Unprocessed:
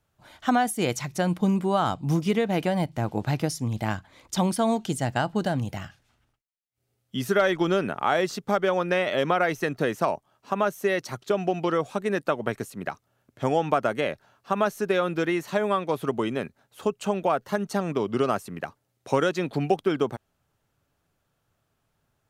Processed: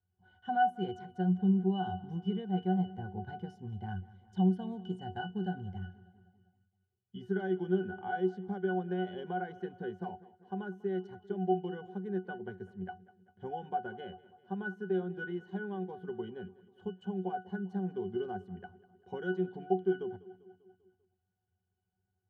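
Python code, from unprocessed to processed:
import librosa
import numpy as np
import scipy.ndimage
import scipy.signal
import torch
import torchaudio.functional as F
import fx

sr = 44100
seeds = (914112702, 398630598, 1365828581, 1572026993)

y = fx.octave_resonator(x, sr, note='F#', decay_s=0.18)
y = fx.echo_feedback(y, sr, ms=197, feedback_pct=58, wet_db=-19.5)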